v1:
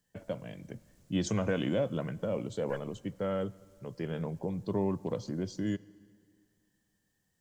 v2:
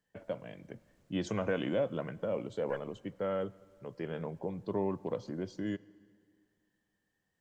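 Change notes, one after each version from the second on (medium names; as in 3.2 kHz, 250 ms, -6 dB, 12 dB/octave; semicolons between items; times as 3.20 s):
master: add tone controls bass -7 dB, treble -11 dB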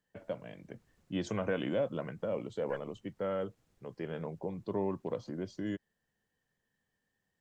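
reverb: off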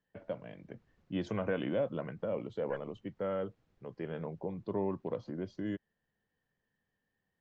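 master: add distance through air 160 m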